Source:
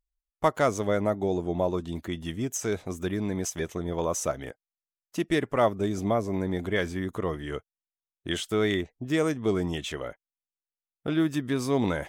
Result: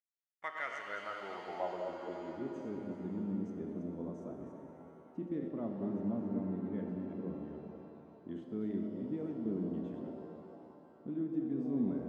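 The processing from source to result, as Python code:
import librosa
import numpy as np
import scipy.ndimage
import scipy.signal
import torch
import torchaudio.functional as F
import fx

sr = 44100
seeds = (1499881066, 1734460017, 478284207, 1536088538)

y = fx.reverse_delay(x, sr, ms=174, wet_db=-6.0)
y = fx.filter_sweep_bandpass(y, sr, from_hz=1900.0, to_hz=230.0, start_s=0.78, end_s=2.8, q=3.4)
y = fx.rev_shimmer(y, sr, seeds[0], rt60_s=3.2, semitones=7, shimmer_db=-8, drr_db=4.0)
y = F.gain(torch.from_numpy(y), -4.5).numpy()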